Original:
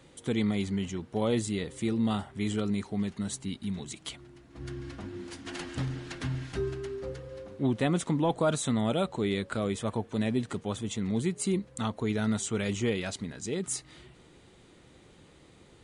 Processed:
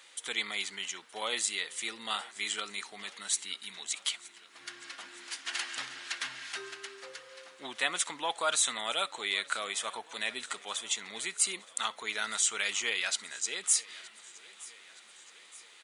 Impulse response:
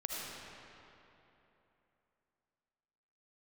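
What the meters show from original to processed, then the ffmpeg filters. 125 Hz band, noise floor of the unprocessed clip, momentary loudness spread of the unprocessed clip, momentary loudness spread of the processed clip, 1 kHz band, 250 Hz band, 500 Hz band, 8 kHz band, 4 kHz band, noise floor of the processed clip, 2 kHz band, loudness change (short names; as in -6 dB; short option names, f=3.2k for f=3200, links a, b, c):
-32.0 dB, -57 dBFS, 12 LU, 19 LU, 0.0 dB, -23.0 dB, -11.0 dB, +8.0 dB, +8.0 dB, -56 dBFS, +6.5 dB, -1.0 dB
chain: -filter_complex "[0:a]highpass=1.5k,aecho=1:1:920|1840|2760|3680:0.0891|0.0508|0.029|0.0165,asplit=2[a][b];[1:a]atrim=start_sample=2205,atrim=end_sample=3087[c];[b][c]afir=irnorm=-1:irlink=0,volume=-9dB[d];[a][d]amix=inputs=2:normalize=0,volume=6dB"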